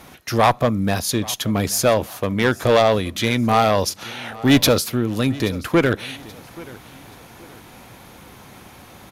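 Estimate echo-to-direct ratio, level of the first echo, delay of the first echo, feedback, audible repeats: -20.0 dB, -20.5 dB, 829 ms, 35%, 2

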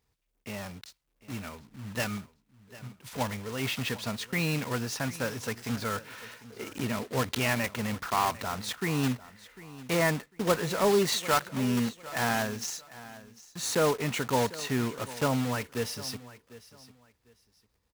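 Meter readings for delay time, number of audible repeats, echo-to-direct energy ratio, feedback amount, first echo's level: 749 ms, 2, -18.0 dB, 24%, -18.0 dB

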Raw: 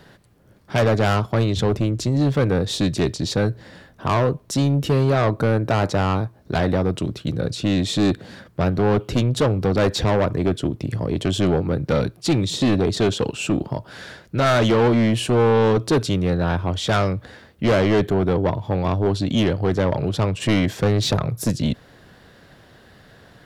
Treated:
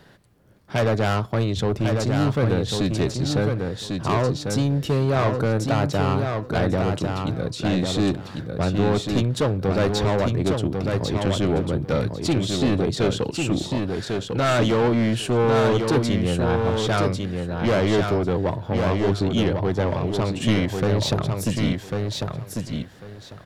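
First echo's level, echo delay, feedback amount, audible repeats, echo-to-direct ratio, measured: -4.5 dB, 1097 ms, 19%, 3, -4.5 dB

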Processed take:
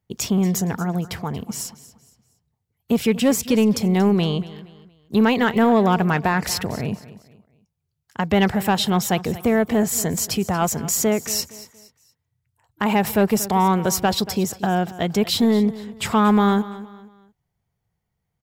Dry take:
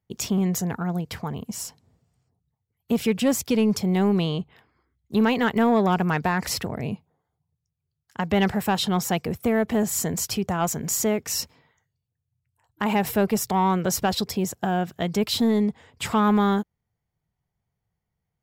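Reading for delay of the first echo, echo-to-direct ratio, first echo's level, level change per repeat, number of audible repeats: 233 ms, -16.5 dB, -17.0 dB, -9.0 dB, 2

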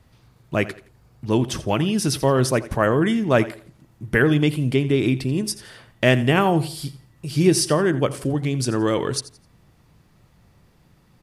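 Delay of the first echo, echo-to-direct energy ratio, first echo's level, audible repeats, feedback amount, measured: 85 ms, -16.5 dB, -17.0 dB, 2, 29%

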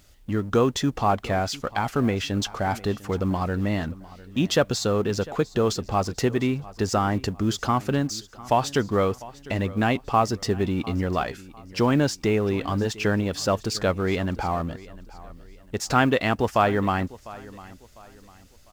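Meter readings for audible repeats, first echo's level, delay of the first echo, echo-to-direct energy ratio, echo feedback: 2, -19.5 dB, 701 ms, -19.0 dB, 35%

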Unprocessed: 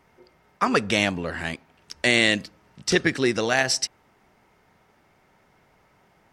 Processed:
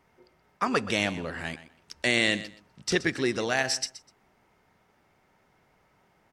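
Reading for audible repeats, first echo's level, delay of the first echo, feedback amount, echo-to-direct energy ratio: 2, -15.0 dB, 125 ms, 19%, -15.0 dB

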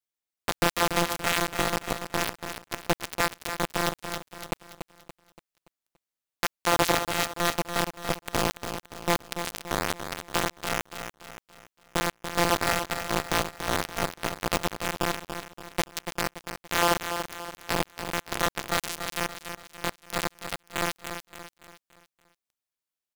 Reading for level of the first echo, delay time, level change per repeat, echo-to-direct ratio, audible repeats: -8.5 dB, 286 ms, -7.5 dB, -7.5 dB, 4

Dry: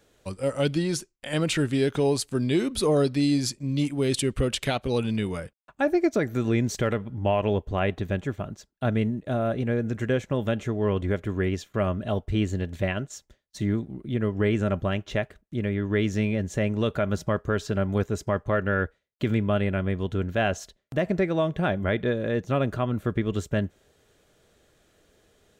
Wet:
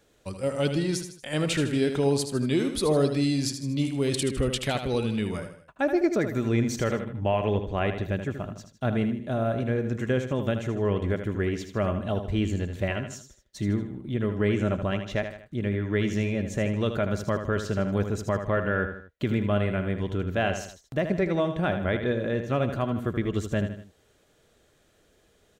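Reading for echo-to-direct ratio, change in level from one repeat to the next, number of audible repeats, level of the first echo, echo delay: -7.5 dB, -7.0 dB, 3, -8.5 dB, 78 ms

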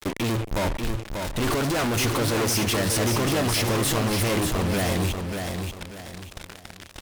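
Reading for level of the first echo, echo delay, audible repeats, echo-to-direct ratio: -5.5 dB, 588 ms, 4, -5.0 dB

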